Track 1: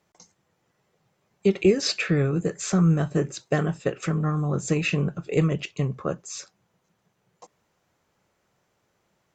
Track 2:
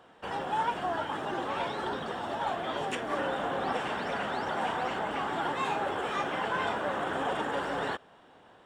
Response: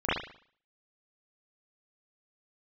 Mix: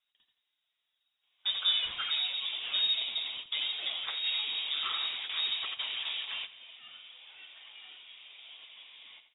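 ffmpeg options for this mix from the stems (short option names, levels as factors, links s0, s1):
-filter_complex "[0:a]flanger=delay=0.7:depth=4.3:regen=-40:speed=0.91:shape=sinusoidal,volume=0.355,asplit=3[s0][s1][s2];[s1]volume=0.501[s3];[1:a]adelay=1150,volume=0.531,asplit=2[s4][s5];[s5]volume=0.178[s6];[s2]apad=whole_len=436684[s7];[s4][s7]sidechaingate=range=0.0224:threshold=0.00224:ratio=16:detection=peak[s8];[s3][s6]amix=inputs=2:normalize=0,aecho=0:1:84|168|252|336|420:1|0.32|0.102|0.0328|0.0105[s9];[s0][s8][s9]amix=inputs=3:normalize=0,lowpass=f=3300:t=q:w=0.5098,lowpass=f=3300:t=q:w=0.6013,lowpass=f=3300:t=q:w=0.9,lowpass=f=3300:t=q:w=2.563,afreqshift=-3900"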